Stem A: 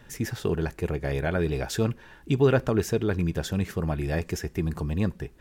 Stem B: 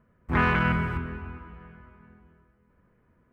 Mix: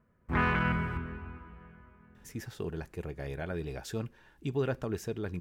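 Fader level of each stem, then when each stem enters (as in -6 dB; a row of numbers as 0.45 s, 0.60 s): -10.5 dB, -5.0 dB; 2.15 s, 0.00 s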